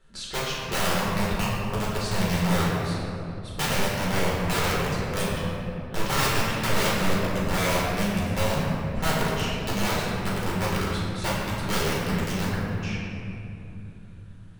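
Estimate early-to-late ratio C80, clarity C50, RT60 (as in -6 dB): 0.0 dB, -1.5 dB, 3.0 s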